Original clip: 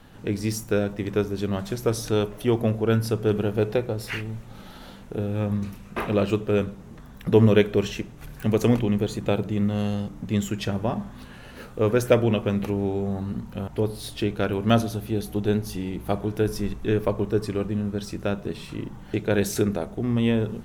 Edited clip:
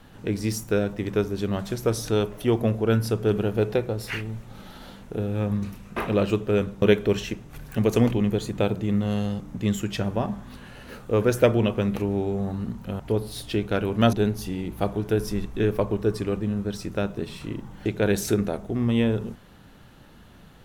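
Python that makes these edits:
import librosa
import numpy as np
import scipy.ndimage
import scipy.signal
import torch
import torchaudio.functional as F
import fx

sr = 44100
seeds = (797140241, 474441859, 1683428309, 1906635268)

y = fx.edit(x, sr, fx.cut(start_s=6.82, length_s=0.68),
    fx.cut(start_s=14.81, length_s=0.6), tone=tone)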